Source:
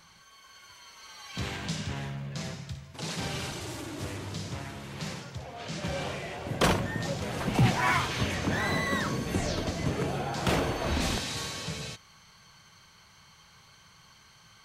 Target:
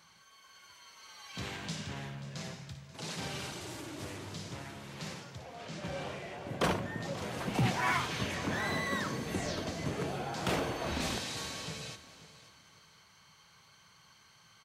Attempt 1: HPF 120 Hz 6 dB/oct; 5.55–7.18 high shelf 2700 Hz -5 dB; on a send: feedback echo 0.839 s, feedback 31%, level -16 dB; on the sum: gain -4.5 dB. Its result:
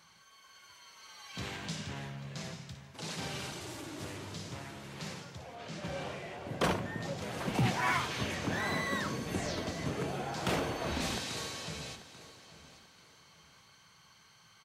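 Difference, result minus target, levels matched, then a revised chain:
echo 0.304 s late
HPF 120 Hz 6 dB/oct; 5.55–7.18 high shelf 2700 Hz -5 dB; on a send: feedback echo 0.535 s, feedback 31%, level -16 dB; on the sum: gain -4.5 dB

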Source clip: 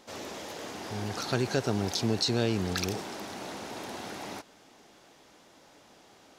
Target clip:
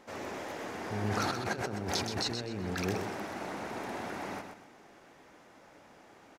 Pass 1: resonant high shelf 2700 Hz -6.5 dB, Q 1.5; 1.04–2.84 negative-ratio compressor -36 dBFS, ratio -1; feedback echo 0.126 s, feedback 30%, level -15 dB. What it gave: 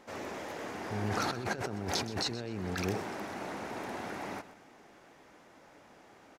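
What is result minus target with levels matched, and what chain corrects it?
echo-to-direct -8 dB
resonant high shelf 2700 Hz -6.5 dB, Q 1.5; 1.04–2.84 negative-ratio compressor -36 dBFS, ratio -1; feedback echo 0.126 s, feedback 30%, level -7 dB

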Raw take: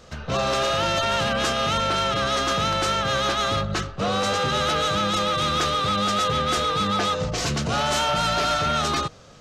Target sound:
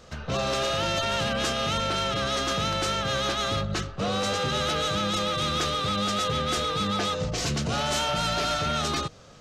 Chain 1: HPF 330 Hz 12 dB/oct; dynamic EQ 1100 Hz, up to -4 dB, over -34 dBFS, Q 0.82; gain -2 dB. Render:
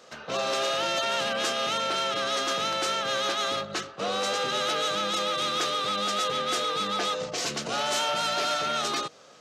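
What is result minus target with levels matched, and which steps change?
250 Hz band -6.5 dB
remove: HPF 330 Hz 12 dB/oct

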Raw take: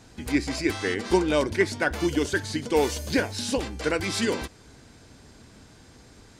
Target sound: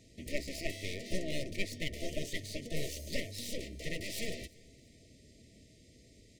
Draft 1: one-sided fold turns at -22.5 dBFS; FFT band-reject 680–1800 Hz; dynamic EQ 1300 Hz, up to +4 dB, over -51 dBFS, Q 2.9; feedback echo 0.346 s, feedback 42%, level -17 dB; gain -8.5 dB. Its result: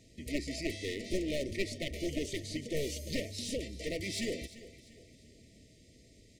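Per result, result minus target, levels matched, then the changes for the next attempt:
one-sided fold: distortion -14 dB; echo-to-direct +10.5 dB
change: one-sided fold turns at -33.5 dBFS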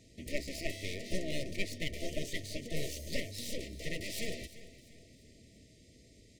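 echo-to-direct +10.5 dB
change: feedback echo 0.346 s, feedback 42%, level -27.5 dB

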